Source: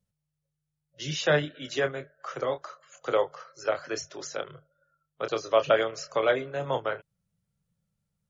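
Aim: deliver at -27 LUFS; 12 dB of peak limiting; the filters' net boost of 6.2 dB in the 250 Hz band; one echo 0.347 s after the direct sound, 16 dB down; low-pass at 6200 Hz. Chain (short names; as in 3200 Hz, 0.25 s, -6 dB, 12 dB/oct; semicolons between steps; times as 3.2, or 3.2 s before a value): LPF 6200 Hz; bell 250 Hz +9 dB; limiter -19 dBFS; echo 0.347 s -16 dB; gain +5 dB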